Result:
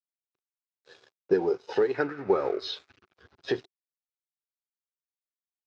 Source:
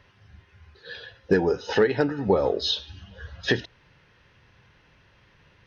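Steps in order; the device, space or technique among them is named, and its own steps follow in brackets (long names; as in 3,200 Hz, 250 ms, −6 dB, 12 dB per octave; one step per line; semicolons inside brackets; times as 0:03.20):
blown loudspeaker (dead-zone distortion −41 dBFS; loudspeaker in its box 140–5,900 Hz, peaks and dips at 210 Hz −7 dB, 380 Hz +9 dB, 760 Hz +4 dB, 1,100 Hz +3 dB, 1,800 Hz −5 dB, 3,100 Hz −4 dB)
0:01.94–0:03.14: flat-topped bell 1,700 Hz +10 dB 1.2 octaves
level −7.5 dB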